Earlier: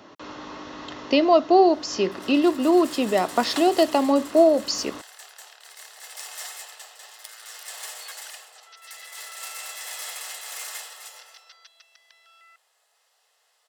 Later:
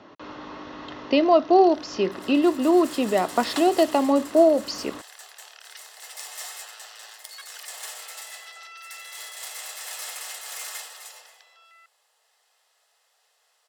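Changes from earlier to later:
speech: add high-frequency loss of the air 130 metres
first sound: entry −0.70 s

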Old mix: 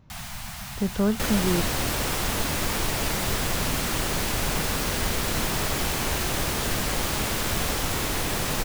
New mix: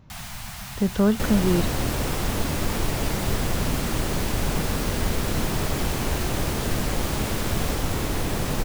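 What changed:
speech +3.5 dB
second sound: add tilt shelving filter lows +4.5 dB, about 720 Hz

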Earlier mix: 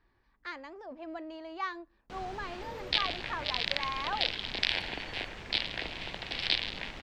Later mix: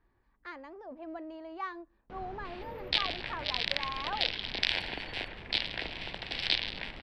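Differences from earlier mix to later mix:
speech: add high-shelf EQ 2,400 Hz −12 dB
first sound: add head-to-tape spacing loss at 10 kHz 34 dB

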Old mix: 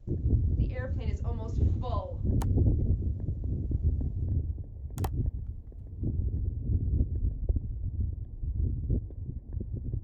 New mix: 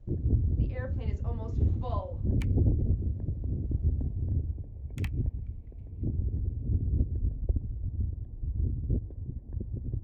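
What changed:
second sound: add high-pass with resonance 2,300 Hz, resonance Q 6.2
master: add high-shelf EQ 4,600 Hz −11.5 dB

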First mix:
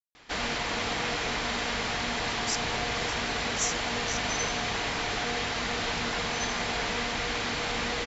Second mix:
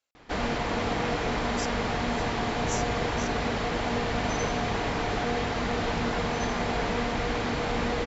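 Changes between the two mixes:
speech: entry −0.90 s
master: add tilt shelving filter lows +7 dB, about 1,400 Hz

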